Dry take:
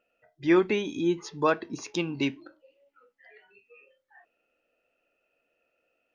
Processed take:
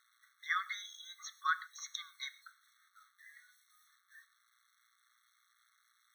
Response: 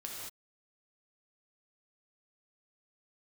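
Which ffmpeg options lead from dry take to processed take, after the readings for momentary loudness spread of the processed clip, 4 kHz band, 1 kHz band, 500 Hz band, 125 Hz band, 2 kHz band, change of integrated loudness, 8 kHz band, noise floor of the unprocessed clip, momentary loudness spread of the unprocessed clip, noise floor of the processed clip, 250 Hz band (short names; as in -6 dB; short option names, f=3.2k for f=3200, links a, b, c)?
22 LU, -5.0 dB, -6.5 dB, under -40 dB, under -40 dB, -4.0 dB, -12.0 dB, n/a, -78 dBFS, 9 LU, -75 dBFS, under -40 dB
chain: -filter_complex "[0:a]bandreject=f=50:t=h:w=6,bandreject=f=100:t=h:w=6,aeval=exprs='val(0)+0.00141*(sin(2*PI*60*n/s)+sin(2*PI*2*60*n/s)/2+sin(2*PI*3*60*n/s)/3+sin(2*PI*4*60*n/s)/4+sin(2*PI*5*60*n/s)/5)':c=same,acrusher=bits=9:mix=0:aa=0.000001,asplit=2[a][b];[1:a]atrim=start_sample=2205,afade=t=out:st=0.19:d=0.01,atrim=end_sample=8820[c];[b][c]afir=irnorm=-1:irlink=0,volume=-11dB[d];[a][d]amix=inputs=2:normalize=0,afftfilt=real='re*eq(mod(floor(b*sr/1024/1100),2),1)':imag='im*eq(mod(floor(b*sr/1024/1100),2),1)':win_size=1024:overlap=0.75,volume=-3dB"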